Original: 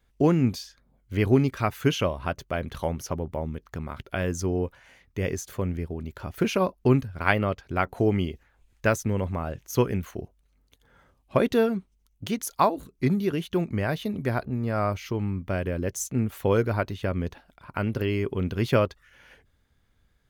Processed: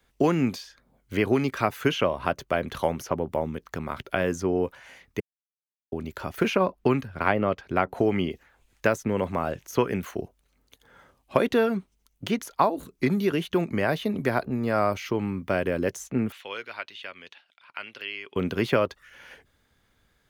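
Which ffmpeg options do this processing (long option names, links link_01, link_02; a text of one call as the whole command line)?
ffmpeg -i in.wav -filter_complex "[0:a]asettb=1/sr,asplit=3[link_01][link_02][link_03];[link_01]atrim=end=6.564[link_04];[link_02]atrim=start=6.56:end=8.31,asetpts=PTS-STARTPTS,afade=type=in:duration=0.004:curve=qsin,afade=type=out:start_time=1.746:duration=0.004:curve=qsin,bass=frequency=250:gain=2,treble=frequency=4000:gain=-7[link_05];[link_03]atrim=start=8.306[link_06];[link_04][link_05]acrossfade=duration=0.004:curve1=hsin:curve2=qsin[link_07];[link_07][link_06]acrossfade=duration=0.004:curve1=qsin:curve2=hsin,asettb=1/sr,asplit=3[link_08][link_09][link_10];[link_08]atrim=end=16.324[link_11];[link_09]atrim=start=16.32:end=18.36,asetpts=PTS-STARTPTS,afade=type=in:duration=0.004:curve=qsin,afade=type=out:start_time=2.036:duration=0.004:curve=qsin,bandpass=frequency=3000:width_type=q:width=1.9[link_12];[link_10]atrim=start=18.356[link_13];[link_11][link_12]acrossfade=duration=0.004:curve1=hsin:curve2=qsin[link_14];[link_14][link_13]acrossfade=duration=0.004:curve1=qsin:curve2=hsin,asplit=3[link_15][link_16][link_17];[link_15]atrim=end=5.2,asetpts=PTS-STARTPTS,afade=type=out:start_time=5.196:duration=0.004:curve=hsin[link_18];[link_16]atrim=start=5.2:end=5.92,asetpts=PTS-STARTPTS,volume=0[link_19];[link_17]atrim=start=5.92,asetpts=PTS-STARTPTS,afade=type=in:duration=0.004:curve=hsin[link_20];[link_18][link_19][link_20]concat=n=3:v=0:a=1,lowshelf=frequency=150:gain=-11,acrossover=split=130|880|3000[link_21][link_22][link_23][link_24];[link_21]acompressor=threshold=-47dB:ratio=4[link_25];[link_22]acompressor=threshold=-26dB:ratio=4[link_26];[link_23]acompressor=threshold=-33dB:ratio=4[link_27];[link_24]acompressor=threshold=-49dB:ratio=4[link_28];[link_25][link_26][link_27][link_28]amix=inputs=4:normalize=0,volume=6dB" out.wav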